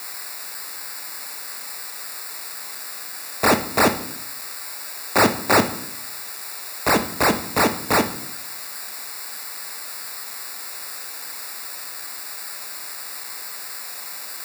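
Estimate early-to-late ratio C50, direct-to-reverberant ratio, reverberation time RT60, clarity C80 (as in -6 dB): 12.5 dB, 7.5 dB, 0.65 s, 16.0 dB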